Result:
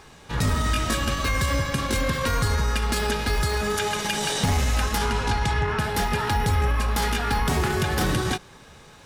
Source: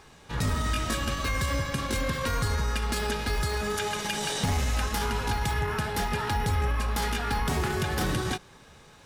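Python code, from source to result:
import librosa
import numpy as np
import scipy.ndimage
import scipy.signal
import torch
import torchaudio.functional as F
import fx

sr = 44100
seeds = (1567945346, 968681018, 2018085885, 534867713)

y = fx.lowpass(x, sr, hz=fx.line((4.97, 12000.0), (5.78, 5100.0)), slope=12, at=(4.97, 5.78), fade=0.02)
y = y * librosa.db_to_amplitude(4.5)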